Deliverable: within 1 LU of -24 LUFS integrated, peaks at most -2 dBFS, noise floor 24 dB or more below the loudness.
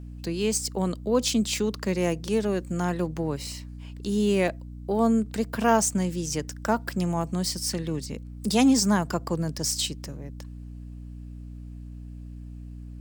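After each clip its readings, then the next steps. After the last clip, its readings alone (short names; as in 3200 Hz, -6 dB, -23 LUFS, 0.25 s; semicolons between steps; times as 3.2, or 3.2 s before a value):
dropouts 2; longest dropout 1.4 ms; hum 60 Hz; harmonics up to 300 Hz; hum level -38 dBFS; loudness -26.0 LUFS; peak -8.0 dBFS; loudness target -24.0 LUFS
-> interpolate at 3.47/4.48, 1.4 ms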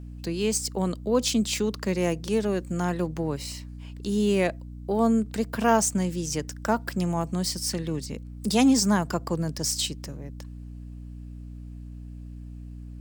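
dropouts 0; hum 60 Hz; harmonics up to 300 Hz; hum level -38 dBFS
-> de-hum 60 Hz, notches 5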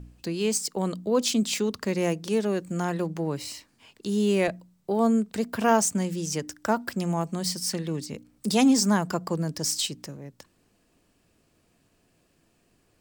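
hum none; loudness -26.5 LUFS; peak -8.0 dBFS; loudness target -24.0 LUFS
-> gain +2.5 dB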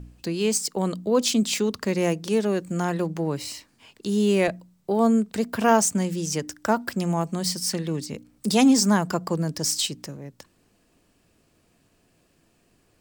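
loudness -24.0 LUFS; peak -5.5 dBFS; noise floor -65 dBFS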